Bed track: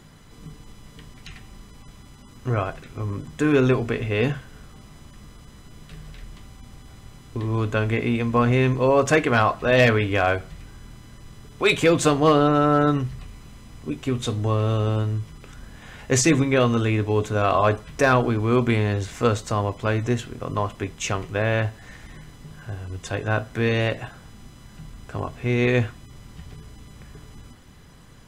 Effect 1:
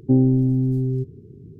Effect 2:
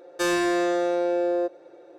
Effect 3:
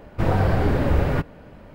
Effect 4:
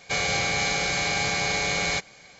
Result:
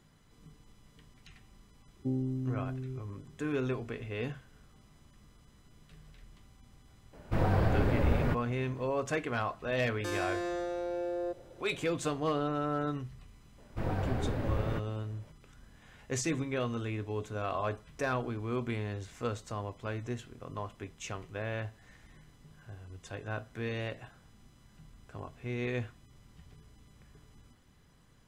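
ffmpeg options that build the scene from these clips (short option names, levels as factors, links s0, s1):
-filter_complex "[3:a]asplit=2[s0][s1];[0:a]volume=0.188[s2];[2:a]alimiter=limit=0.0708:level=0:latency=1:release=71[s3];[1:a]atrim=end=1.59,asetpts=PTS-STARTPTS,volume=0.15,afade=t=in:d=0.004:c=hsin,afade=t=out:st=1.586:d=0.004:c=hsin,adelay=1960[s4];[s0]atrim=end=1.74,asetpts=PTS-STARTPTS,volume=0.398,afade=t=in:d=0.004:c=hsin,afade=t=out:st=1.736:d=0.004:c=hsin,adelay=7130[s5];[s3]atrim=end=1.98,asetpts=PTS-STARTPTS,volume=0.531,afade=t=in:d=0.004:c=hsin,afade=t=out:st=1.976:d=0.004:c=hsin,adelay=9850[s6];[s1]atrim=end=1.74,asetpts=PTS-STARTPTS,volume=0.211,afade=t=in:d=0.004:c=hsin,afade=t=out:st=1.736:d=0.004:c=hsin,adelay=13580[s7];[s2][s4][s5][s6][s7]amix=inputs=5:normalize=0"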